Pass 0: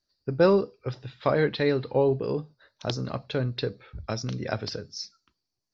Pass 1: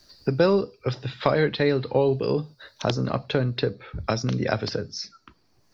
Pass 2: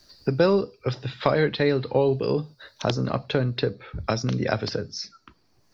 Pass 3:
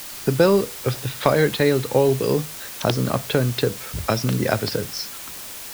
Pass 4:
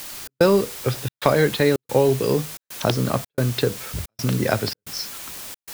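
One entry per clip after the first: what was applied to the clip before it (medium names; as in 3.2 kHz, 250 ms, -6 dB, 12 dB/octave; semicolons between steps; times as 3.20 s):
three bands compressed up and down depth 70%; trim +3.5 dB
no audible change
added noise white -39 dBFS; trim +3.5 dB
trance gate "xx.xxxxx.xx" 111 bpm -60 dB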